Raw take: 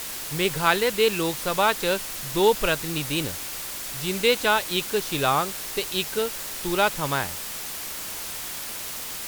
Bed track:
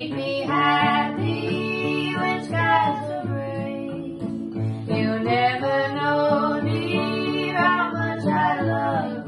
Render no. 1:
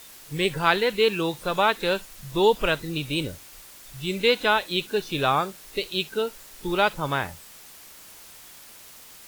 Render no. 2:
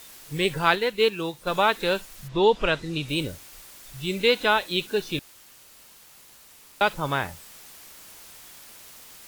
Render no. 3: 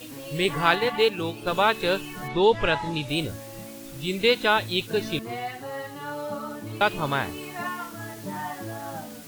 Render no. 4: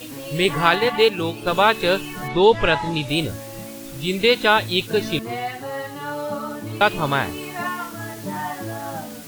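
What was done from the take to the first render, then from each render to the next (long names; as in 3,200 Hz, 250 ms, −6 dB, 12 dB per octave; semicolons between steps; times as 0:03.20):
noise reduction from a noise print 13 dB
0:00.75–0:01.47: expander for the loud parts, over −31 dBFS; 0:02.27–0:03.07: low-pass filter 3,600 Hz → 9,400 Hz; 0:05.19–0:06.81: fill with room tone
mix in bed track −13 dB
level +5 dB; brickwall limiter −3 dBFS, peak gain reduction 3 dB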